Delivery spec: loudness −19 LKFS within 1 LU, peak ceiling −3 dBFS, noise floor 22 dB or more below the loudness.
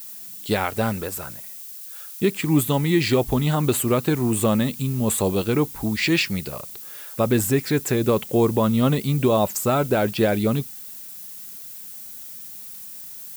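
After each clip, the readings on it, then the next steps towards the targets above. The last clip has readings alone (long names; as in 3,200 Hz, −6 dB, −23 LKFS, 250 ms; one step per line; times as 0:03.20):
background noise floor −38 dBFS; target noise floor −44 dBFS; integrated loudness −21.5 LKFS; sample peak −8.5 dBFS; target loudness −19.0 LKFS
→ broadband denoise 6 dB, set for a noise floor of −38 dBFS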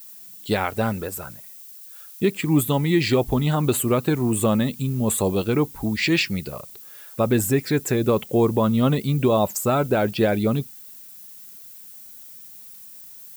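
background noise floor −43 dBFS; target noise floor −44 dBFS
→ broadband denoise 6 dB, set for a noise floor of −43 dBFS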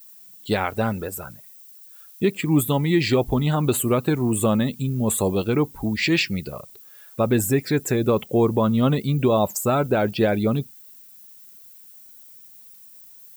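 background noise floor −47 dBFS; integrated loudness −22.0 LKFS; sample peak −9.0 dBFS; target loudness −19.0 LKFS
→ level +3 dB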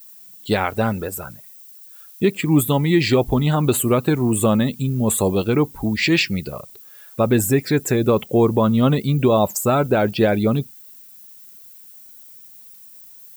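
integrated loudness −19.0 LKFS; sample peak −6.0 dBFS; background noise floor −44 dBFS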